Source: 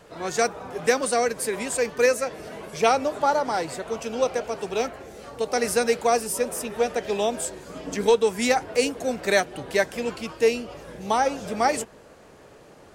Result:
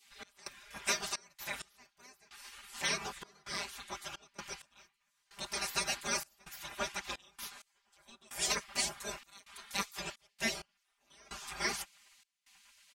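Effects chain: spectral gate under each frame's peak -20 dB weak; comb 5 ms, depth 90%; step gate "x.xxx.x...xxx" 65 bpm -24 dB; gain -4 dB

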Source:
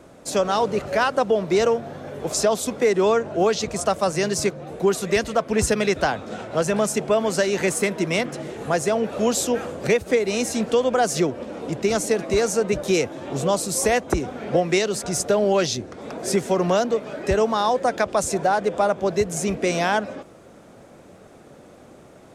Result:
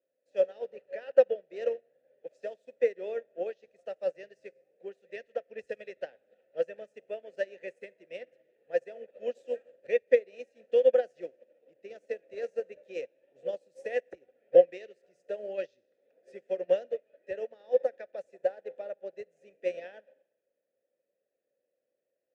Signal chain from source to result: vowel filter e; Schroeder reverb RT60 1.2 s, combs from 30 ms, DRR 14 dB; upward expander 2.5:1, over -41 dBFS; gain +6 dB

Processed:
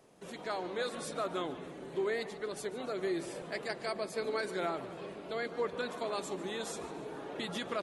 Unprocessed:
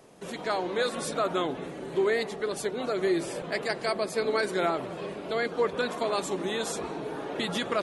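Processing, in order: feedback echo 0.145 s, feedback 48%, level -16.5 dB; gain -8 dB

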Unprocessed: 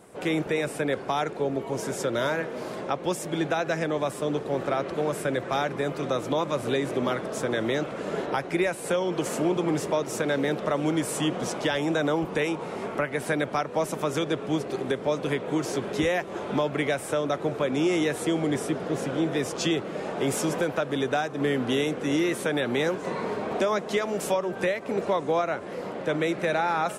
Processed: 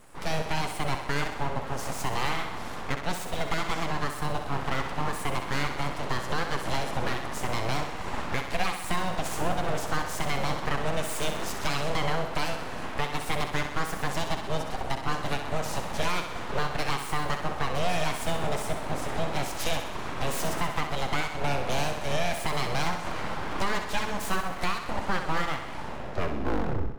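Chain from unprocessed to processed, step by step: tape stop at the end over 1.33 s; full-wave rectifier; thinning echo 64 ms, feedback 63%, high-pass 190 Hz, level -7.5 dB

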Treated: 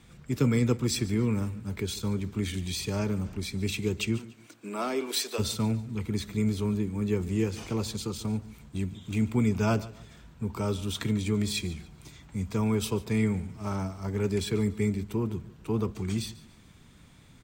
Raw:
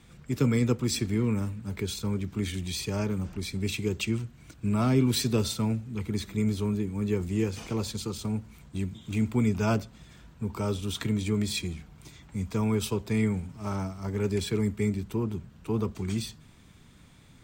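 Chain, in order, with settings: 4.17–5.38 HPF 190 Hz -> 490 Hz 24 dB/oct; feedback echo 0.144 s, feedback 34%, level -19 dB

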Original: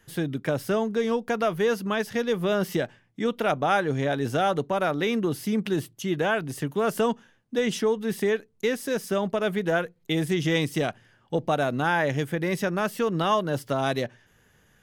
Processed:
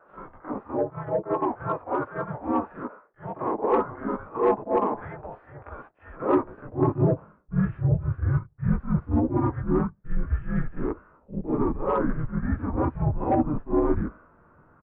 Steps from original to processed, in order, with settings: HPF 87 Hz 6 dB/oct; doubler 18 ms -4 dB; reverse; compressor 6:1, threshold -30 dBFS, peak gain reduction 12.5 dB; reverse; harmonic-percussive split percussive -10 dB; high-pass sweep 970 Hz -> 250 Hz, 6.1–8.02; mistuned SSB -300 Hz 230–2000 Hz; bell 410 Hz +8 dB 2.3 oct; on a send: reverse echo 44 ms -10 dB; on the sum: harmoniser -5 st -7 dB, -4 st -4 dB; dynamic EQ 980 Hz, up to +4 dB, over -43 dBFS, Q 3.8; soft clip -14.5 dBFS, distortion -20 dB; gain +3 dB

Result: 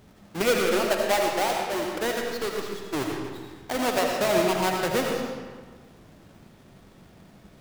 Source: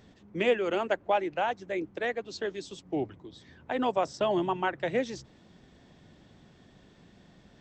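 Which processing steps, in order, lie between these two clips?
half-waves squared off; digital reverb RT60 1.5 s, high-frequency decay 0.75×, pre-delay 40 ms, DRR 0.5 dB; gain -2 dB

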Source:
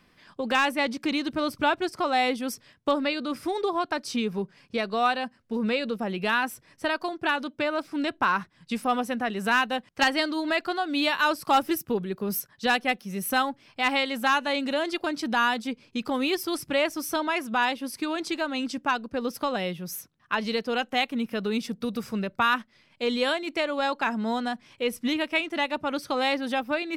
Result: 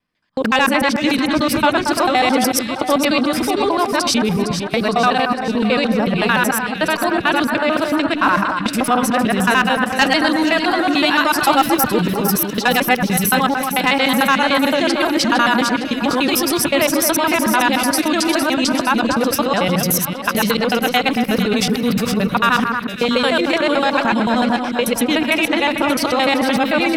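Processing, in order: local time reversal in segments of 74 ms; gate -48 dBFS, range -35 dB; in parallel at +2.5 dB: negative-ratio compressor -36 dBFS, ratio -1; on the sum: notch 380 Hz, Q 12; echo with dull and thin repeats by turns 0.229 s, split 2000 Hz, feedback 72%, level -5.5 dB; gain +7 dB

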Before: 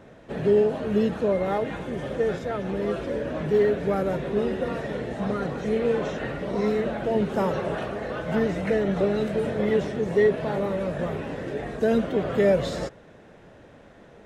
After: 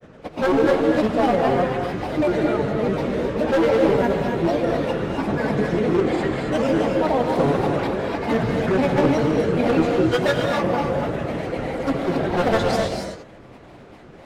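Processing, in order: wavefolder -17.5 dBFS; grains, pitch spread up and down by 7 st; non-linear reverb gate 0.3 s rising, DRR 2.5 dB; gain +5 dB

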